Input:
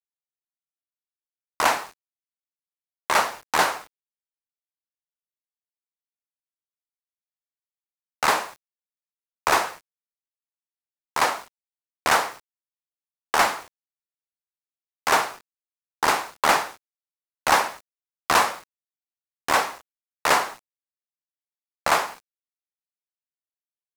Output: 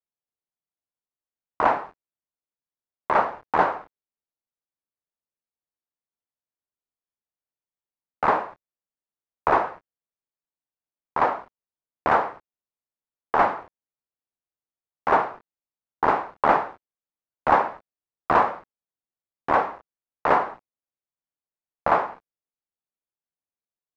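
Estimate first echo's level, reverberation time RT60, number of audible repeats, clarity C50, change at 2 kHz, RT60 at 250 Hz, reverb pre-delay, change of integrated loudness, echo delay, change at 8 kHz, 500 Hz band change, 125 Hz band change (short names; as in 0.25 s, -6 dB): none, none, none, none, -5.0 dB, none, none, -0.5 dB, none, under -25 dB, +3.0 dB, +3.5 dB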